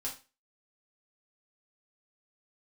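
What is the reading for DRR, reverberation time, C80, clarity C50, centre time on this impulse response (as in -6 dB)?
-4.5 dB, 0.30 s, 16.0 dB, 9.0 dB, 20 ms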